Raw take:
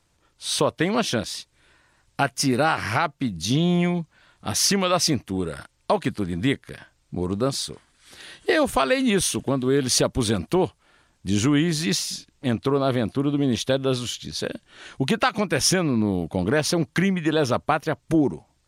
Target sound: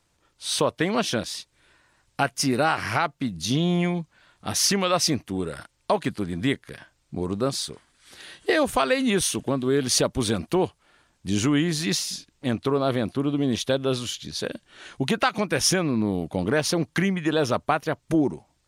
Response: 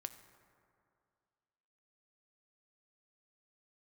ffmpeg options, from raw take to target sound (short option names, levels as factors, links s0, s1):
-af "lowshelf=f=140:g=-3.5,volume=0.891"